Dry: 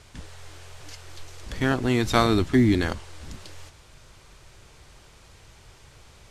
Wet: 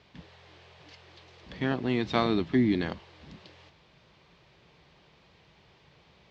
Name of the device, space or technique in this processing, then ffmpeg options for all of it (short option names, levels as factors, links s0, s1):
guitar cabinet: -af "highpass=100,equalizer=f=100:t=q:w=4:g=-8,equalizer=f=170:t=q:w=4:g=6,equalizer=f=1400:t=q:w=4:g=-6,lowpass=f=4300:w=0.5412,lowpass=f=4300:w=1.3066,volume=0.562"